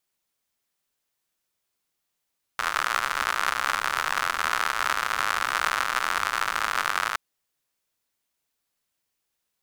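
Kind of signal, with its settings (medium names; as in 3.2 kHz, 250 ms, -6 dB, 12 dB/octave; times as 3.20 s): rain from filtered ticks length 4.57 s, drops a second 110, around 1.3 kHz, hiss -22 dB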